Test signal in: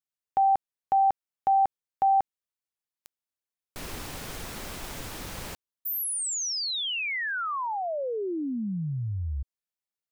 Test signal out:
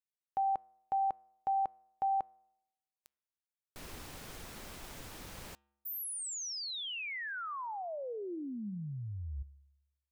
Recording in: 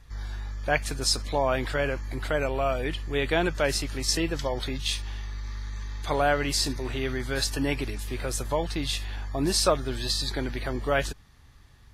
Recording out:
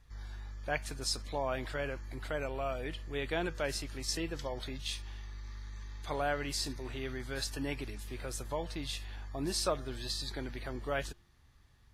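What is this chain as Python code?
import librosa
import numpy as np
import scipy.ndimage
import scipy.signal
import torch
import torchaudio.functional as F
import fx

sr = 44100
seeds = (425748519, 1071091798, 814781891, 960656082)

y = fx.comb_fb(x, sr, f0_hz=70.0, decay_s=0.89, harmonics='odd', damping=0.3, mix_pct=40)
y = y * librosa.db_to_amplitude(-5.5)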